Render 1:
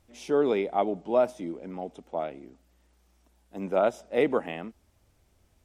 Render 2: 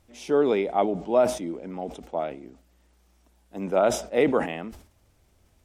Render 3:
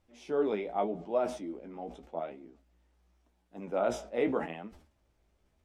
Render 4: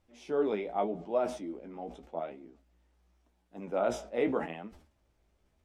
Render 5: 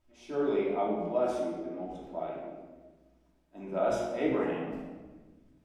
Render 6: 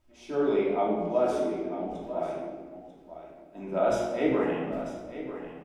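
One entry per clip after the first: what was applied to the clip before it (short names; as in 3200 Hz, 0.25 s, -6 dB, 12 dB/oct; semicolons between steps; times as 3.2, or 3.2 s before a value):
sustainer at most 120 dB/s; gain +2.5 dB
bell 100 Hz -7 dB 0.55 oct; flange 0.86 Hz, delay 9.7 ms, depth 9.6 ms, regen +32%; high shelf 6100 Hz -11.5 dB; gain -4.5 dB
nothing audible
shoebox room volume 1100 m³, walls mixed, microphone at 2.8 m; gain -4.5 dB
echo 0.944 s -12 dB; gain +3.5 dB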